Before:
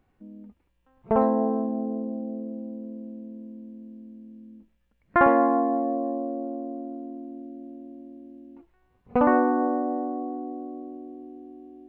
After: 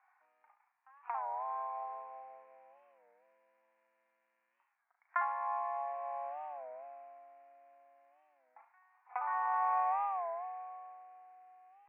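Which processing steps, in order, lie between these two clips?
running median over 15 samples
on a send: flutter between parallel walls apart 6.2 metres, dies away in 0.33 s
on the sum: compressor whose output falls as the input rises −26 dBFS, ratio −1
Chebyshev band-pass filter 780–2,400 Hz, order 4
wow of a warped record 33 1/3 rpm, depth 160 cents
level +3.5 dB

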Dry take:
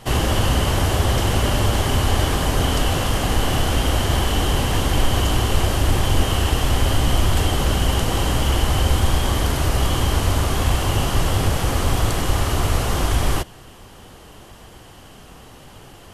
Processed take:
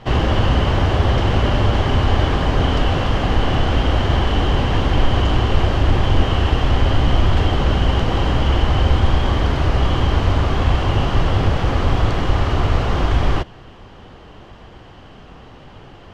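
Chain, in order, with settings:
high-frequency loss of the air 210 metres
level +3 dB

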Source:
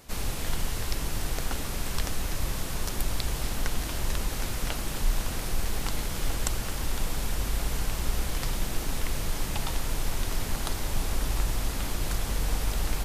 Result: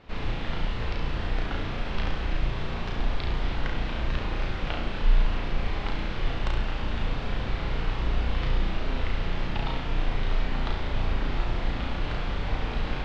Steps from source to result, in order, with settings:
low-pass filter 3,500 Hz 24 dB per octave
flutter between parallel walls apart 5.9 metres, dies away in 0.59 s

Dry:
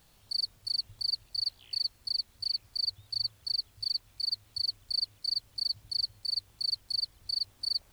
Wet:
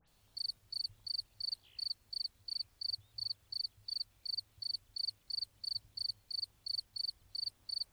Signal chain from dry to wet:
all-pass dispersion highs, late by 79 ms, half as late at 2,900 Hz
level −8 dB

